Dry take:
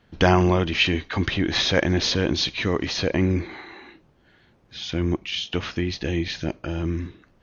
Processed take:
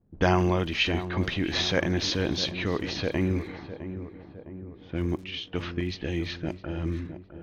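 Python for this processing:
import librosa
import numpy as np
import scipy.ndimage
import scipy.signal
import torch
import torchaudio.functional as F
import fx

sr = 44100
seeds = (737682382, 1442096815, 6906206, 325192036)

y = fx.dmg_crackle(x, sr, seeds[0], per_s=250.0, level_db=-40.0)
y = fx.env_lowpass(y, sr, base_hz=320.0, full_db=-20.0)
y = fx.echo_filtered(y, sr, ms=659, feedback_pct=60, hz=1200.0, wet_db=-10.5)
y = F.gain(torch.from_numpy(y), -5.0).numpy()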